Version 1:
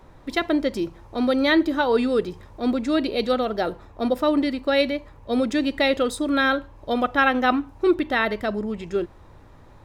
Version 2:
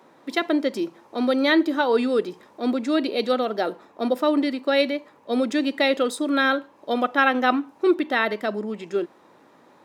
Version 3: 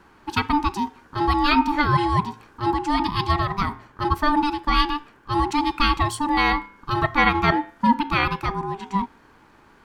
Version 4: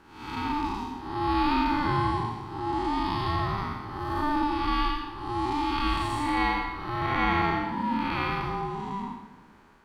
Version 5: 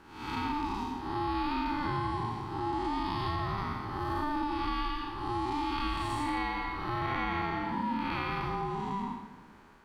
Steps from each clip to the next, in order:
HPF 210 Hz 24 dB/oct
de-hum 158.4 Hz, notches 19; ring modulator 590 Hz; gain +4 dB
time blur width 0.279 s; on a send at -9 dB: reverb RT60 1.4 s, pre-delay 13 ms; on the sum: gain -2.5 dB
compressor 4:1, threshold -29 dBFS, peak gain reduction 8.5 dB

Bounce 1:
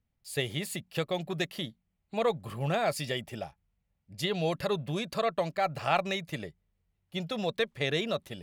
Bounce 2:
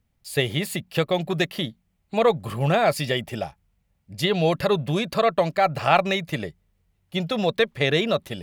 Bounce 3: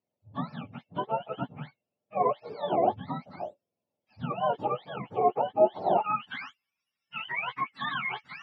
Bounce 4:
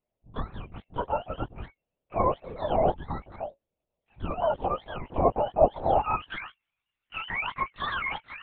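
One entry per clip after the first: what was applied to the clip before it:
dynamic EQ 7700 Hz, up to -5 dB, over -50 dBFS, Q 0.77; gain +9 dB
spectrum mirrored in octaves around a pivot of 700 Hz; band-pass sweep 560 Hz -> 1900 Hz, 5.65–6.39; gain +3 dB
LPC vocoder at 8 kHz whisper; gain +1.5 dB

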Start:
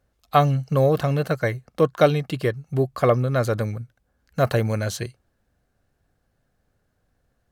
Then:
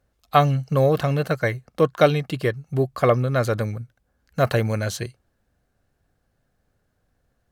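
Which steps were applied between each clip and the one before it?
dynamic EQ 2400 Hz, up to +3 dB, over -33 dBFS, Q 0.74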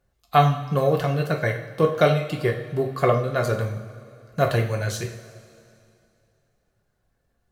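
reverb removal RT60 0.54 s; two-slope reverb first 0.5 s, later 2.6 s, from -16 dB, DRR 1.5 dB; gain -2.5 dB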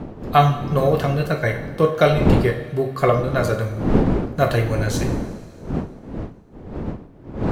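wind noise 300 Hz -27 dBFS; gain +2.5 dB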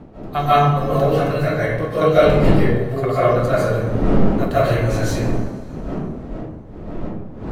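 digital reverb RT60 0.93 s, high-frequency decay 0.45×, pre-delay 0.11 s, DRR -10 dB; gain -8.5 dB

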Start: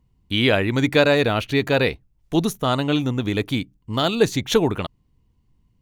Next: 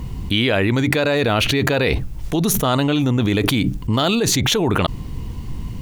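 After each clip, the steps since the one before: fast leveller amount 100%; gain -5.5 dB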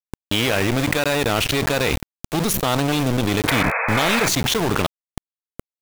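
sample gate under -17.5 dBFS; painted sound noise, 3.47–4.29, 440–2600 Hz -21 dBFS; gain -1.5 dB

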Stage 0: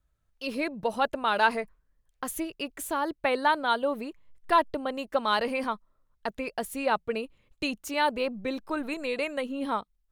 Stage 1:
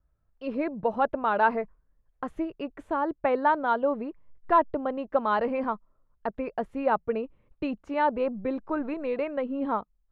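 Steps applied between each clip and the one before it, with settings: LPF 1300 Hz 12 dB/oct; gain +2.5 dB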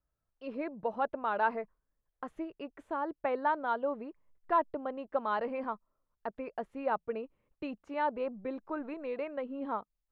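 low shelf 160 Hz -9.5 dB; gain -6.5 dB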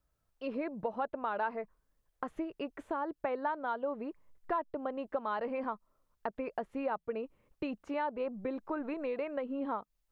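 compressor 3:1, threshold -40 dBFS, peak gain reduction 13.5 dB; gain +6 dB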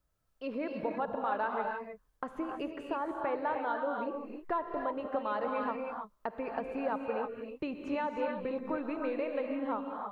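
non-linear reverb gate 0.34 s rising, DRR 1.5 dB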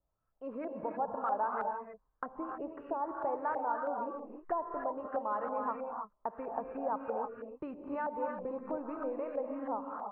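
LFO low-pass saw up 3.1 Hz 720–1500 Hz; gain -5.5 dB

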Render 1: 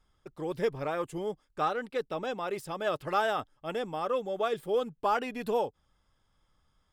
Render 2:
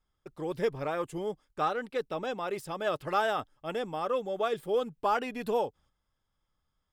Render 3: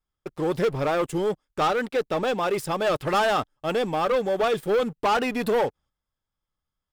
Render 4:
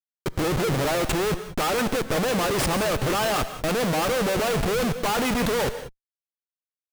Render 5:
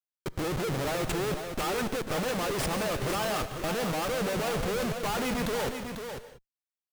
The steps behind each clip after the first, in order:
gate -59 dBFS, range -9 dB
sample leveller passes 3
Schmitt trigger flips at -36.5 dBFS; non-linear reverb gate 0.21 s rising, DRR 11 dB; gain +2 dB
echo 0.495 s -7.5 dB; gain -7 dB

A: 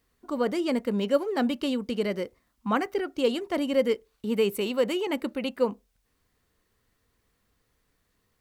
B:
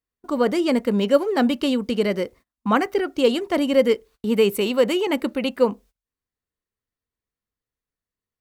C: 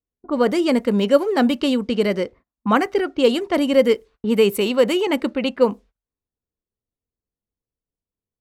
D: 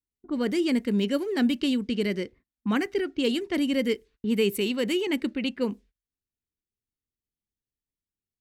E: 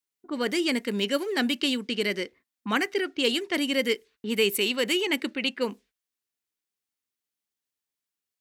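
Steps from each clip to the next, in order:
gate -51 dBFS, range -26 dB; gain +6.5 dB
low-pass opened by the level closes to 640 Hz, open at -17 dBFS; gain +2 dB
band shelf 810 Hz -10.5 dB; gain -5 dB
HPF 830 Hz 6 dB/oct; gain +6.5 dB

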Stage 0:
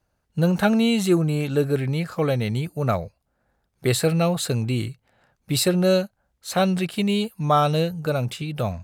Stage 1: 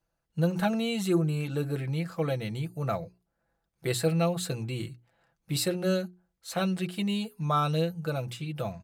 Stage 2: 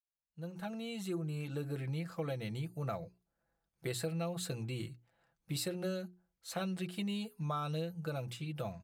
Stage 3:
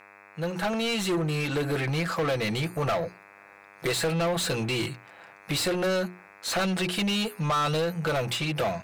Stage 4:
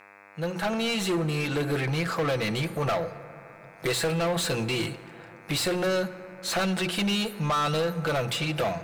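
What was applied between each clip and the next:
notches 60/120/180/240/300/360/420 Hz; comb 6 ms, depth 54%; gain -8.5 dB
opening faded in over 1.91 s; compressor, threshold -28 dBFS, peak gain reduction 8 dB; gain -5.5 dB
buzz 100 Hz, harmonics 26, -75 dBFS -1 dB/oct; overdrive pedal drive 26 dB, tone 4700 Hz, clips at -24 dBFS; gain +5.5 dB
plate-style reverb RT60 3.3 s, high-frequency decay 0.35×, DRR 13.5 dB

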